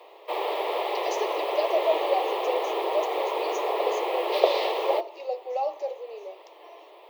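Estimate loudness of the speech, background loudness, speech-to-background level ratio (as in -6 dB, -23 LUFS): -31.5 LUFS, -27.5 LUFS, -4.0 dB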